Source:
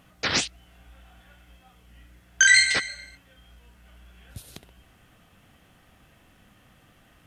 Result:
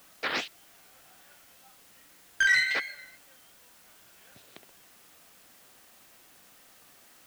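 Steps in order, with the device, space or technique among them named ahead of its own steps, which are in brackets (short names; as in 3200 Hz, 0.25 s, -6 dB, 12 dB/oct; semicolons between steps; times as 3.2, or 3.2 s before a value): tape answering machine (BPF 340–3000 Hz; soft clip -13.5 dBFS, distortion -16 dB; wow and flutter; white noise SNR 22 dB); gain -2.5 dB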